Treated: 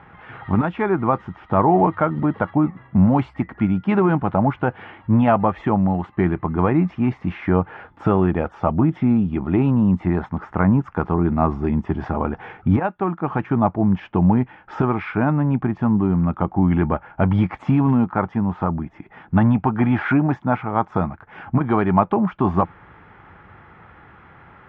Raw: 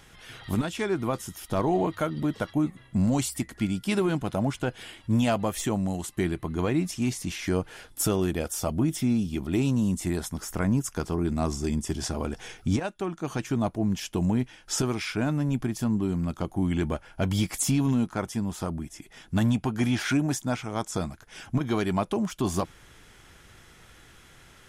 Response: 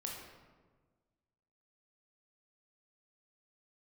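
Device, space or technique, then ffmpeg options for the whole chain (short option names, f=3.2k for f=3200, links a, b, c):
bass cabinet: -af "highpass=64,equalizer=f=93:t=q:w=4:g=3,equalizer=f=180:t=q:w=4:g=4,equalizer=f=850:t=q:w=4:g=9,equalizer=f=1.2k:t=q:w=4:g=6,lowpass=f=2.1k:w=0.5412,lowpass=f=2.1k:w=1.3066,volume=6.5dB"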